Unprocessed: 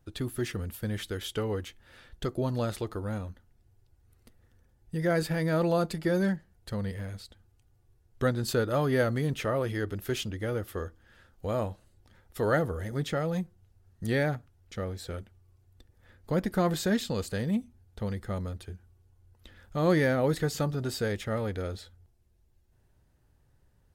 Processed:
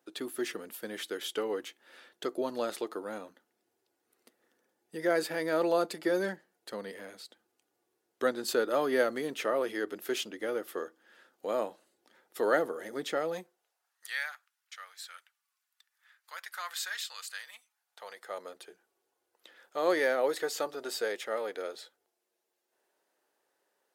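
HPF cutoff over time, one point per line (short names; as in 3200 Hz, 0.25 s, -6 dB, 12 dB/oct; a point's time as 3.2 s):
HPF 24 dB/oct
13.33 s 290 Hz
14.07 s 1200 Hz
17.58 s 1200 Hz
18.51 s 390 Hz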